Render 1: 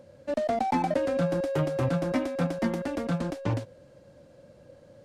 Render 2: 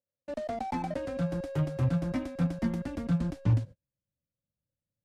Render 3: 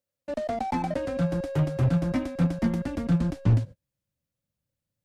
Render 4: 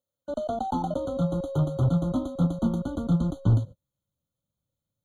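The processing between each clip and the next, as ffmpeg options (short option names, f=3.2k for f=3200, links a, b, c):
-af "agate=range=-38dB:threshold=-42dB:ratio=16:detection=peak,asubboost=boost=7:cutoff=190,volume=-7dB"
-af "aeval=exprs='clip(val(0),-1,0.0708)':c=same,volume=5dB"
-af "afftfilt=real='re*eq(mod(floor(b*sr/1024/1500),2),0)':imag='im*eq(mod(floor(b*sr/1024/1500),2),0)':win_size=1024:overlap=0.75"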